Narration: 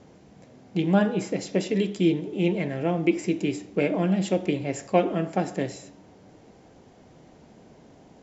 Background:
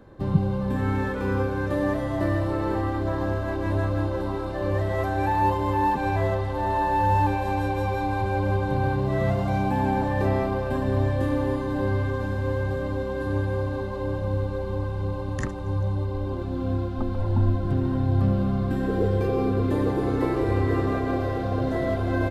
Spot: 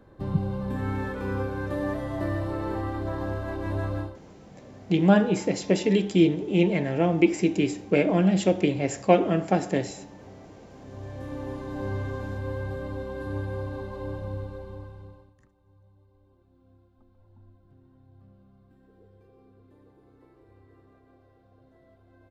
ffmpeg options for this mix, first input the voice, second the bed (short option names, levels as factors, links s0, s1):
-filter_complex "[0:a]adelay=4150,volume=1.33[s0];[1:a]volume=6.31,afade=t=out:st=3.96:d=0.22:silence=0.0794328,afade=t=in:st=10.76:d=1.2:silence=0.0944061,afade=t=out:st=14.09:d=1.25:silence=0.0421697[s1];[s0][s1]amix=inputs=2:normalize=0"